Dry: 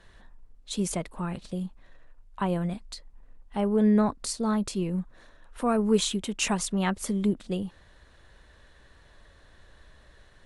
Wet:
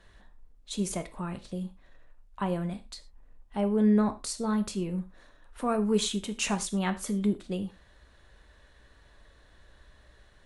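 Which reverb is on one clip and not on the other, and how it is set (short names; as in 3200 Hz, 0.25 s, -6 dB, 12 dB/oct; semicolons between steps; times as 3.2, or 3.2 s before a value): non-linear reverb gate 0.14 s falling, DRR 8.5 dB; gain -3 dB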